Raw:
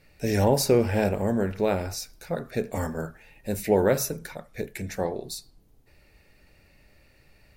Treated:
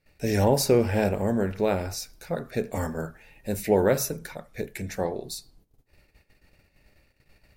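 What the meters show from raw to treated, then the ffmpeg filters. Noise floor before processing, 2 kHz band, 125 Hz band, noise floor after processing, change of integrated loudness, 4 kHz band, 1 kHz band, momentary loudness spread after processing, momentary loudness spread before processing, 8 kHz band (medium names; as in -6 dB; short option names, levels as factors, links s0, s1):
-60 dBFS, 0.0 dB, 0.0 dB, -68 dBFS, 0.0 dB, 0.0 dB, 0.0 dB, 15 LU, 15 LU, 0.0 dB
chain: -af "agate=range=0.2:threshold=0.00158:ratio=16:detection=peak"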